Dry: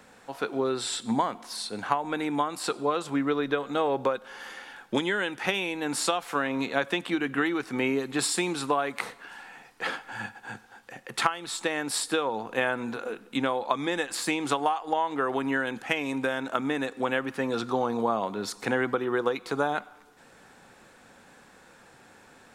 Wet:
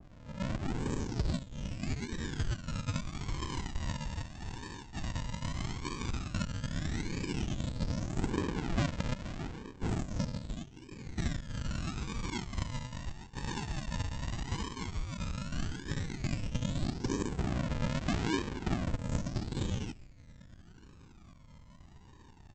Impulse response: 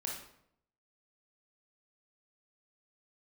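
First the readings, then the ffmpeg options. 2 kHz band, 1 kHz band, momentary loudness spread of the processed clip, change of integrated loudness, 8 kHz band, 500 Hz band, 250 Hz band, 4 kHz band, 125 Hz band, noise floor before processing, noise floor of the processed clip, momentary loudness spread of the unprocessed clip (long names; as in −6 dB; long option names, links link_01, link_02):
−13.5 dB, −15.0 dB, 10 LU, −8.5 dB, −10.5 dB, −15.0 dB, −6.5 dB, −9.0 dB, +8.0 dB, −55 dBFS, −55 dBFS, 9 LU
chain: -filter_complex "[1:a]atrim=start_sample=2205,atrim=end_sample=3528,asetrate=26460,aresample=44100[link_01];[0:a][link_01]afir=irnorm=-1:irlink=0,acrossover=split=150[link_02][link_03];[link_02]acompressor=mode=upward:threshold=-58dB:ratio=2.5[link_04];[link_03]asuperpass=centerf=2000:order=20:qfactor=0.6[link_05];[link_04][link_05]amix=inputs=2:normalize=0,acompressor=threshold=-31dB:ratio=12,flanger=delay=0.1:depth=2.5:regen=-38:speed=0.47:shape=triangular,aresample=16000,acrusher=samples=33:mix=1:aa=0.000001:lfo=1:lforange=19.8:lforate=0.8,aresample=44100,aphaser=in_gain=1:out_gain=1:delay=1.1:decay=0.54:speed=0.11:type=sinusoidal,adynamicequalizer=threshold=0.002:dfrequency=1500:dqfactor=0.7:tfrequency=1500:tqfactor=0.7:attack=5:release=100:ratio=0.375:range=2.5:mode=boostabove:tftype=highshelf"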